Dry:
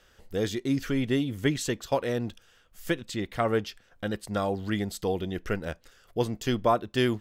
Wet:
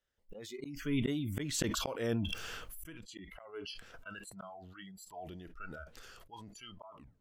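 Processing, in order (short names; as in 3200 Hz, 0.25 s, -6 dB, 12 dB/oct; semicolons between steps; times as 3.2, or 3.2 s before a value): tape stop at the end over 0.48 s; Doppler pass-by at 1.62, 16 m/s, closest 4.8 m; spectral noise reduction 23 dB; auto swell 0.77 s; sustainer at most 23 dB/s; gain +11 dB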